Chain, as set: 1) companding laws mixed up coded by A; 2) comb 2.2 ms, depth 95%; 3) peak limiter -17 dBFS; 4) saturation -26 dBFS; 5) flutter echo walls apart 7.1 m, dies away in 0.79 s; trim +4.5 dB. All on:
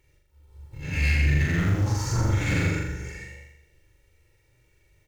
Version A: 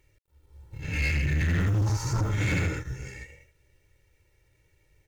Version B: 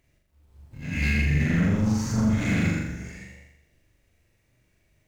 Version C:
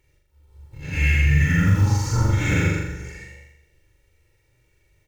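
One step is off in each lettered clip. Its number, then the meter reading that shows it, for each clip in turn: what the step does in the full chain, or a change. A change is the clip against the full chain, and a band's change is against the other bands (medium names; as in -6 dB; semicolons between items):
5, crest factor change -5.5 dB; 2, 250 Hz band +8.0 dB; 4, distortion -11 dB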